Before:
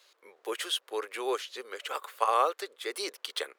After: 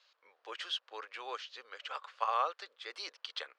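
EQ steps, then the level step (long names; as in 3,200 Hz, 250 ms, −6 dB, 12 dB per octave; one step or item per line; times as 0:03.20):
loudspeaker in its box 160–5,100 Hz, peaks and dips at 390 Hz −9 dB, 2,100 Hz −4 dB, 3,700 Hz −3 dB
parametric band 230 Hz −11.5 dB 2.6 octaves
−3.0 dB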